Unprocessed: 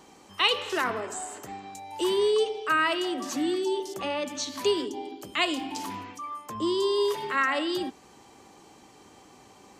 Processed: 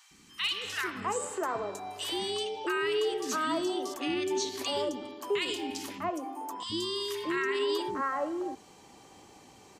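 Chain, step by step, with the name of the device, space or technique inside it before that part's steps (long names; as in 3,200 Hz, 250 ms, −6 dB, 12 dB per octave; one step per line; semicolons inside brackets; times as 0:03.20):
0:05.98–0:06.59: first-order pre-emphasis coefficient 0.9
three-band delay without the direct sound highs, lows, mids 110/650 ms, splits 310/1,300 Hz
clipper into limiter (hard clipping −15 dBFS, distortion −30 dB; brickwall limiter −21.5 dBFS, peak gain reduction 6.5 dB)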